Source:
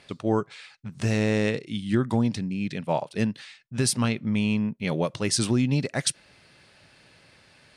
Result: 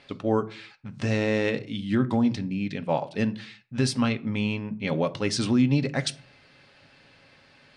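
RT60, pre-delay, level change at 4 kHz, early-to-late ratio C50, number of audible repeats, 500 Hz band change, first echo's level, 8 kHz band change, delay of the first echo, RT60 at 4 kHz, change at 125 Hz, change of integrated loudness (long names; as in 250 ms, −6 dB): 0.55 s, 4 ms, −1.5 dB, 20.0 dB, no echo audible, +0.5 dB, no echo audible, −8.0 dB, no echo audible, 0.30 s, −1.5 dB, −0.5 dB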